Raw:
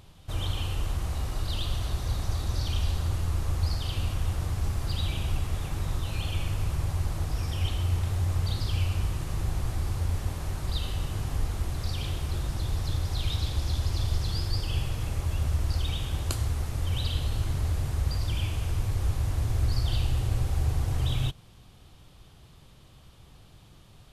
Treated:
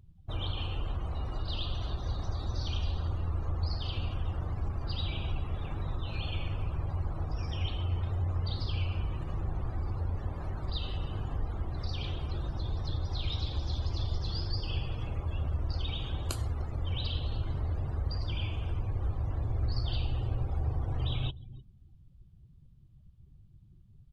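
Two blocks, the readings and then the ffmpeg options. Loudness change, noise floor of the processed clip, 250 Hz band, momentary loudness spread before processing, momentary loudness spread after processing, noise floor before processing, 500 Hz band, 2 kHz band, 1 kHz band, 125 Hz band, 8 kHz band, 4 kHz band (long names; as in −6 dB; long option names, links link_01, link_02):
−4.5 dB, −57 dBFS, −3.5 dB, 4 LU, 4 LU, −53 dBFS, −2.5 dB, −6.0 dB, −3.0 dB, −4.5 dB, −14.5 dB, −3.5 dB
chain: -filter_complex "[0:a]bass=frequency=250:gain=-3,treble=frequency=4000:gain=-1,asplit=2[link_01][link_02];[link_02]adelay=303.2,volume=-17dB,highshelf=frequency=4000:gain=-6.82[link_03];[link_01][link_03]amix=inputs=2:normalize=0,asplit=2[link_04][link_05];[link_05]acompressor=threshold=-36dB:ratio=6,volume=-2dB[link_06];[link_04][link_06]amix=inputs=2:normalize=0,afftdn=noise_reduction=30:noise_floor=-42,volume=-4dB"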